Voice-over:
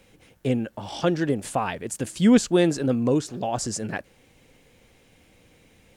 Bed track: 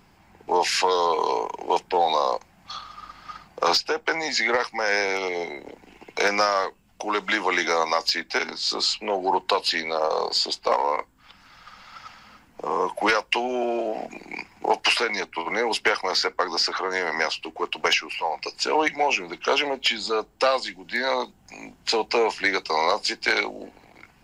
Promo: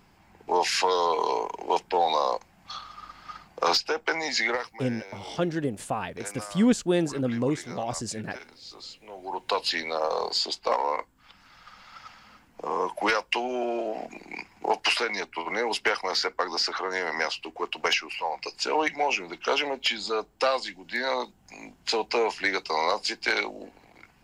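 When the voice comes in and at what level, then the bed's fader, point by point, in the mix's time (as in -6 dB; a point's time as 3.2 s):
4.35 s, -4.5 dB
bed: 4.46 s -2.5 dB
4.88 s -19.5 dB
9.08 s -19.5 dB
9.56 s -3.5 dB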